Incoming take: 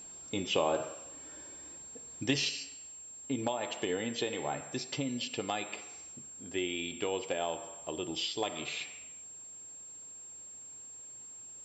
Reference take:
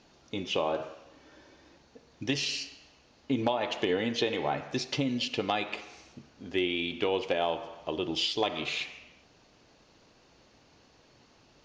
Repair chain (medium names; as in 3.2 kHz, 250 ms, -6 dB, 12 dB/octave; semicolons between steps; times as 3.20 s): band-stop 7.5 kHz, Q 30; trim 0 dB, from 2.49 s +5.5 dB